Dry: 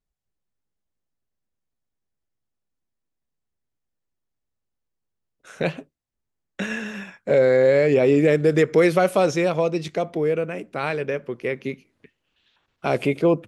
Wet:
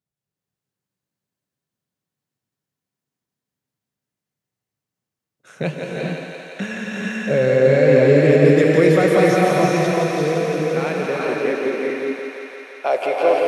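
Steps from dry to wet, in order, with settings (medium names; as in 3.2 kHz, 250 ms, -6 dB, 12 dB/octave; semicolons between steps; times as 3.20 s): high-pass sweep 130 Hz -> 590 Hz, 10.08–12.70 s; thinning echo 171 ms, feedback 84%, high-pass 360 Hz, level -5 dB; gated-style reverb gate 470 ms rising, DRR -1.5 dB; trim -2 dB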